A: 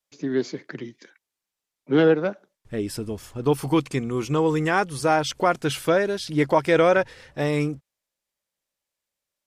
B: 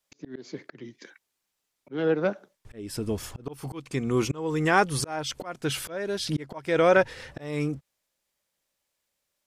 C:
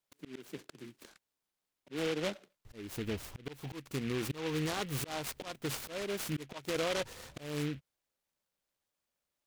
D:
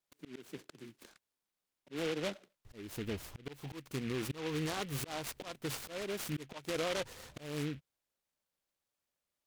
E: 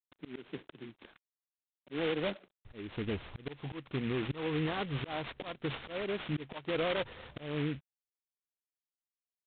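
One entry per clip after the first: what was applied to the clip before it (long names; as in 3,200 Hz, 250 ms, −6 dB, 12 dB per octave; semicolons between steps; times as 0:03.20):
in parallel at −2 dB: downward compressor 10 to 1, threshold −27 dBFS, peak gain reduction 14.5 dB; on the sum: volume swells 498 ms
brickwall limiter −18.5 dBFS, peak gain reduction 11.5 dB; short delay modulated by noise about 2,200 Hz, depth 0.13 ms; level −7 dB
pitch vibrato 8.5 Hz 54 cents; level −2 dB
in parallel at −5 dB: asymmetric clip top −34.5 dBFS, bottom −30.5 dBFS; on the sum: G.726 24 kbit/s 8,000 Hz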